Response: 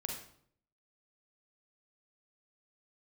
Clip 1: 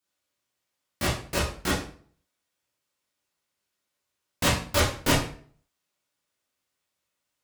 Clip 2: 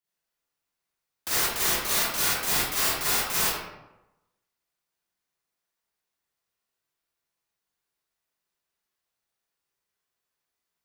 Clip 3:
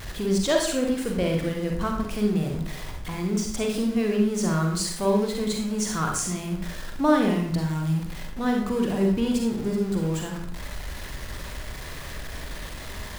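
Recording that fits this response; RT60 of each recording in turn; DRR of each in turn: 3; 0.45, 1.0, 0.65 s; -7.5, -10.0, 1.0 dB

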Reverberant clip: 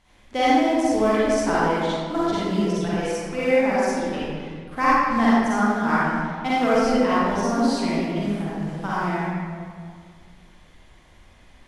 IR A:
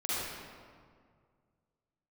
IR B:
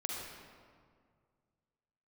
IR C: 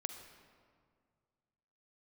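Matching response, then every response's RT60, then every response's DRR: A; 2.0, 2.0, 2.0 s; -10.0, -2.0, 7.0 dB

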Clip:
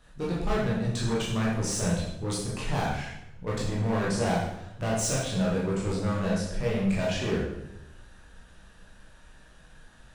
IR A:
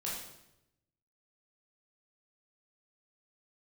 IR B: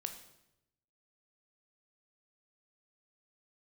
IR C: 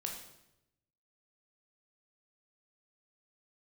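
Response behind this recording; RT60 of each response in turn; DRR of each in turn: A; 0.85, 0.85, 0.85 s; -6.0, 6.0, 0.5 dB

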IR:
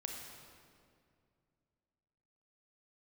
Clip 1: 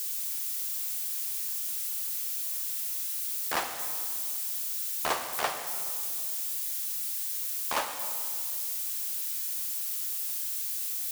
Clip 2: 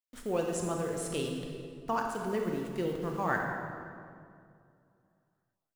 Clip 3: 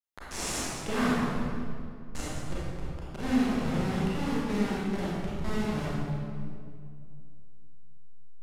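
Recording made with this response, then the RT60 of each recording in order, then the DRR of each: 2; 2.3, 2.3, 2.3 s; 6.5, 1.0, -8.0 dB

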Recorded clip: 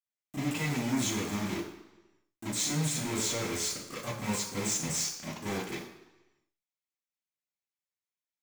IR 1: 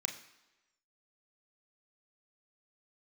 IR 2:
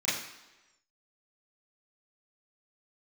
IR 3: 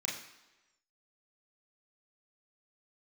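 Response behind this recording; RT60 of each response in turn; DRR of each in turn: 2; 1.1, 1.1, 1.1 s; 4.0, -12.0, -4.0 dB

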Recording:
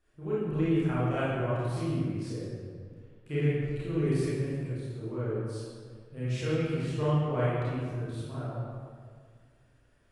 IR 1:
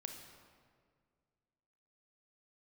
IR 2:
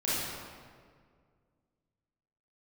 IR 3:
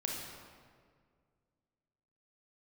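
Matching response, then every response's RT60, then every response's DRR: 2; 1.9, 1.9, 1.9 s; 4.0, -10.5, -1.5 dB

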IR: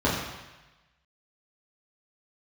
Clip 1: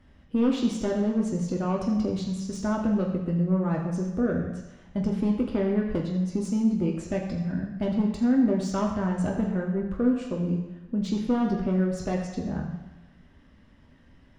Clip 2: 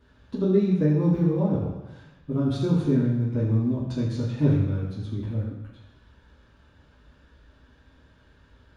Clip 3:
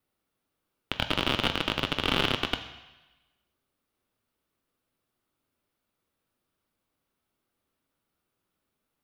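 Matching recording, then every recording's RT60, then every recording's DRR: 2; 1.1, 1.1, 1.1 s; -0.5, -8.5, 7.5 dB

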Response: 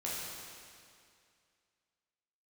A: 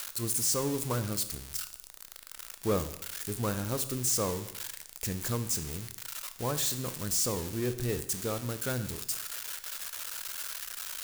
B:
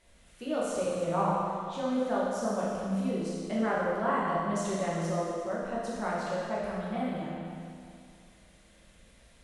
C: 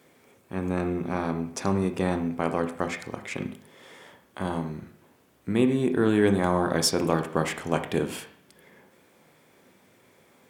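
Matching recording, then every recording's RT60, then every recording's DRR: B; 0.80, 2.3, 0.55 s; 9.5, -7.0, 6.5 dB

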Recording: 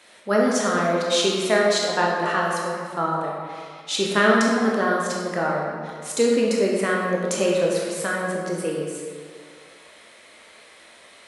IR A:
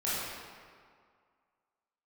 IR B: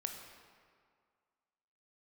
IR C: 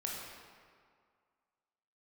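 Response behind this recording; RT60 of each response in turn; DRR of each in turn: C; 2.0, 2.0, 2.0 s; -10.5, 3.5, -3.0 dB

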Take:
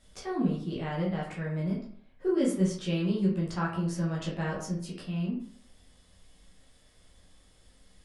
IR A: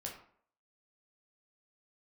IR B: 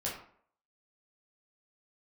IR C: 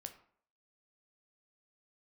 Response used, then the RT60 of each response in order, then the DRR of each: B; 0.60, 0.60, 0.60 s; -1.5, -5.5, 6.0 dB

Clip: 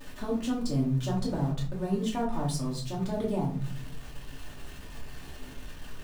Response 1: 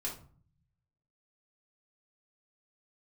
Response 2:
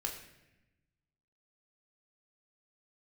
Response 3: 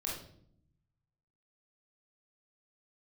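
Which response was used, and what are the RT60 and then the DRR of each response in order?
1; 0.45, 0.95, 0.65 s; -4.5, 1.0, -4.5 dB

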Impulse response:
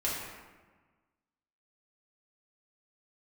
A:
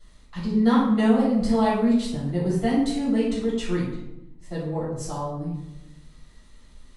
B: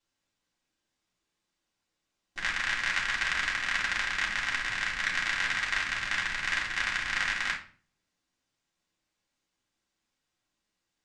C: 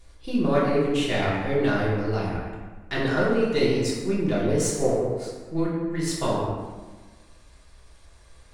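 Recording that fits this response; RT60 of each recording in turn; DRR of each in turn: C; 0.85, 0.45, 1.3 s; -11.0, -5.0, -7.5 dB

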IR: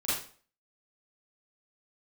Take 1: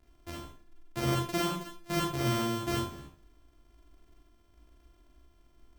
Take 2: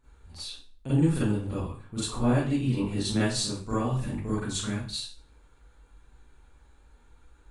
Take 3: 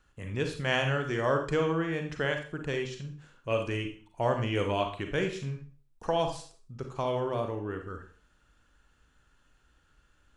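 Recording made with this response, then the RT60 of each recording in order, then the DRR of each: 2; 0.45, 0.45, 0.45 s; -3.0, -11.5, 4.5 dB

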